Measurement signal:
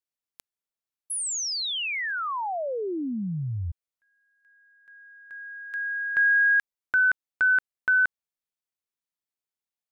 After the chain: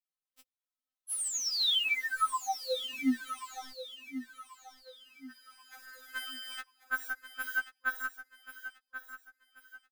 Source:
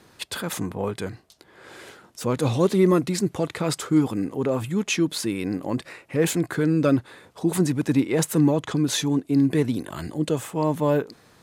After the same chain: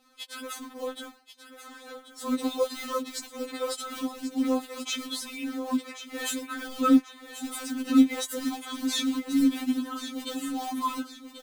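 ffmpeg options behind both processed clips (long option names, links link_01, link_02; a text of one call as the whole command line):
ffmpeg -i in.wav -filter_complex "[0:a]acrusher=bits=4:mode=log:mix=0:aa=0.000001,acrossover=split=400[link_01][link_02];[link_02]acompressor=threshold=-23dB:ratio=6:attack=26:release=37:knee=2.83:detection=peak[link_03];[link_01][link_03]amix=inputs=2:normalize=0,superequalizer=8b=0.282:10b=2:13b=1.58,aphaser=in_gain=1:out_gain=1:delay=3.5:decay=0.43:speed=1:type=sinusoidal,dynaudnorm=framelen=500:gausssize=5:maxgain=7dB,asplit=2[link_04][link_05];[link_05]aecho=0:1:1085|2170|3255|4340:0.282|0.0986|0.0345|0.0121[link_06];[link_04][link_06]amix=inputs=2:normalize=0,afftfilt=real='re*3.46*eq(mod(b,12),0)':imag='im*3.46*eq(mod(b,12),0)':win_size=2048:overlap=0.75,volume=-7.5dB" out.wav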